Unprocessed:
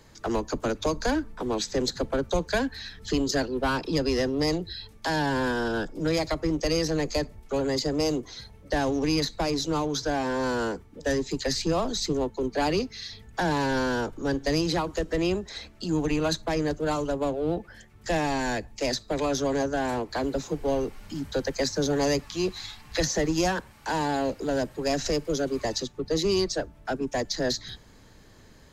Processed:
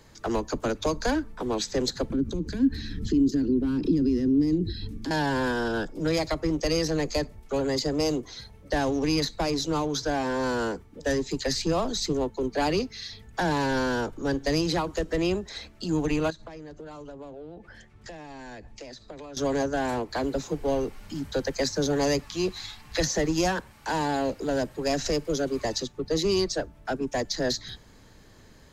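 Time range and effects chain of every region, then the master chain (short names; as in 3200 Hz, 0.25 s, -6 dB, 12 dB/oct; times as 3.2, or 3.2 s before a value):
2.1–5.11 compressor 16:1, threshold -36 dBFS + resonant low shelf 440 Hz +14 dB, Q 3
16.3–19.37 compressor 16:1, threshold -37 dBFS + air absorption 55 m
whole clip: dry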